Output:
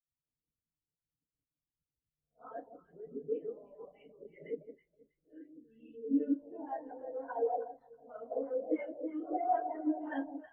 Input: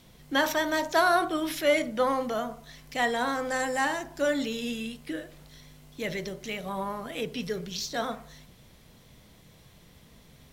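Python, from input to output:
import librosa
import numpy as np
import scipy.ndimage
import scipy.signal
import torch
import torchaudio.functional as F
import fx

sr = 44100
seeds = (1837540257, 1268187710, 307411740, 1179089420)

p1 = x[::-1].copy()
p2 = fx.filter_lfo_lowpass(p1, sr, shape='square', hz=2.1, low_hz=570.0, high_hz=7800.0, q=1.8)
p3 = np.clip(p2, -10.0 ** (-23.0 / 20.0), 10.0 ** (-23.0 / 20.0))
p4 = fx.dynamic_eq(p3, sr, hz=2900.0, q=3.8, threshold_db=-55.0, ratio=4.0, max_db=8)
p5 = fx.env_lowpass_down(p4, sr, base_hz=1900.0, full_db=-29.5)
p6 = p5 + fx.echo_alternate(p5, sr, ms=161, hz=890.0, feedback_pct=68, wet_db=-2.5, dry=0)
p7 = fx.rev_fdn(p6, sr, rt60_s=0.51, lf_ratio=0.75, hf_ratio=0.85, size_ms=20.0, drr_db=-7.0)
p8 = fx.hpss(p7, sr, part='harmonic', gain_db=-14)
p9 = fx.high_shelf(p8, sr, hz=5500.0, db=-5.5)
p10 = fx.spectral_expand(p9, sr, expansion=2.5)
y = p10 * librosa.db_to_amplitude(-6.0)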